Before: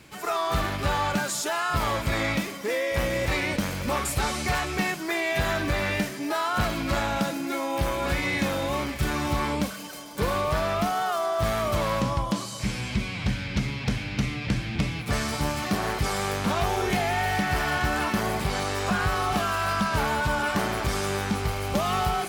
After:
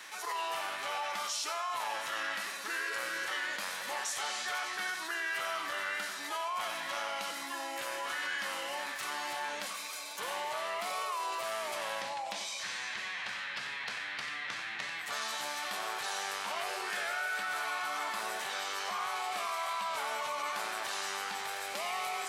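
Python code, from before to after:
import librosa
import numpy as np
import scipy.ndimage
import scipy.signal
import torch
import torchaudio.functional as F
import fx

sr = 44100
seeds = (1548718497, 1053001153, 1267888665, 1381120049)

y = fx.formant_shift(x, sr, semitones=-4)
y = scipy.signal.sosfilt(scipy.signal.butter(2, 940.0, 'highpass', fs=sr, output='sos'), y)
y = y + 10.0 ** (-10.5 / 20.0) * np.pad(y, (int(91 * sr / 1000.0), 0))[:len(y)]
y = fx.env_flatten(y, sr, amount_pct=50)
y = y * 10.0 ** (-7.5 / 20.0)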